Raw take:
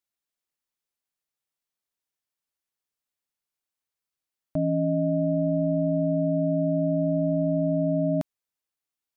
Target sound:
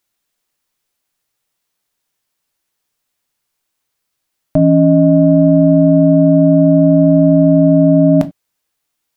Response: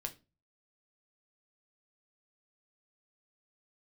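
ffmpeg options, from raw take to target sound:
-filter_complex "[0:a]acontrast=57,asplit=2[s0][s1];[1:a]atrim=start_sample=2205,atrim=end_sample=4410[s2];[s1][s2]afir=irnorm=-1:irlink=0,volume=1.58[s3];[s0][s3]amix=inputs=2:normalize=0,volume=1.33"

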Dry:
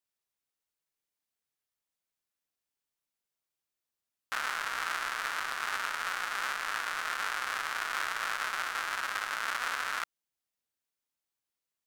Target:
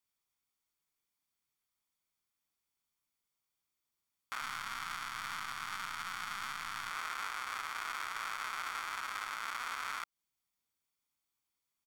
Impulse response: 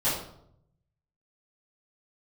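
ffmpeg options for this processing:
-filter_complex "[0:a]asettb=1/sr,asplit=3[s0][s1][s2];[s0]atrim=end=4.414[s3];[s1]atrim=start=4.41:end=6.91,asetpts=PTS-STARTPTS,afade=t=in:d=0.004:c=qsin,afade=t=out:st=2.496:d=0.004:c=qsin,aeval=exprs='if(lt(val(0),0),0.708*val(0),val(0))':c=same[s4];[s2]atrim=start=6.906[s5];[s3][s4]acrossfade=d=0.004:c1=hsin:c2=qsin[s6];[s6][s5]acrossfade=d=0.004:c1=qsin:c2=hsin,aecho=1:1:0.9:0.39,alimiter=level_in=1.26:limit=0.0631:level=0:latency=1:release=188,volume=0.794,volume=1.12"

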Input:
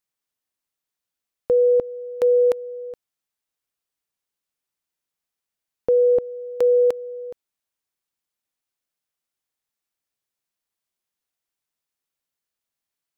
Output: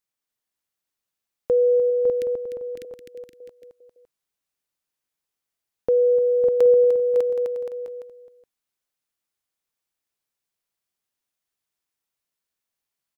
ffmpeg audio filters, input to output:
-filter_complex "[0:a]asettb=1/sr,asplit=3[s0][s1][s2];[s0]atrim=end=1.904[s3];[s1]atrim=start=1.9:end=2.85,asetpts=PTS-STARTPTS,afade=t=in:d=0.004:c=qsin,afade=t=out:st=0.946:d=0.004:c=qsin,asuperstop=centerf=790:order=8:qfactor=0.54[s4];[s2]atrim=start=2.846[s5];[s3][s4]acrossfade=d=0.004:c1=hsin:c2=qsin[s6];[s6][s5]acrossfade=d=0.004:c1=qsin:c2=hsin,aecho=1:1:300|555|771.8|956|1113:0.631|0.398|0.251|0.158|0.1,volume=0.841"

